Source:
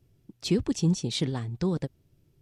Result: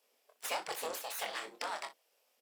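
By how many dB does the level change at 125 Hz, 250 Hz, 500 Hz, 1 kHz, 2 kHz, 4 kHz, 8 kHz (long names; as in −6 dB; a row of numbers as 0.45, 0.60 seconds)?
below −40 dB, −31.0 dB, −10.0 dB, +6.0 dB, +4.0 dB, −7.0 dB, −4.5 dB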